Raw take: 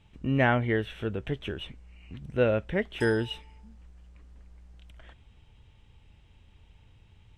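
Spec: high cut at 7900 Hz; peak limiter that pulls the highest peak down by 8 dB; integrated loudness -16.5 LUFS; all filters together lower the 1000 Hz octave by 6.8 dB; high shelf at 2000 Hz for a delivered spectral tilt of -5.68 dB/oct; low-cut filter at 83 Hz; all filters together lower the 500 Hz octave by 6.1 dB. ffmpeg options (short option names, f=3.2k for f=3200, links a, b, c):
-af "highpass=83,lowpass=7.9k,equalizer=f=500:t=o:g=-5.5,equalizer=f=1k:t=o:g=-6.5,highshelf=f=2k:g=-4.5,volume=19.5dB,alimiter=limit=-4dB:level=0:latency=1"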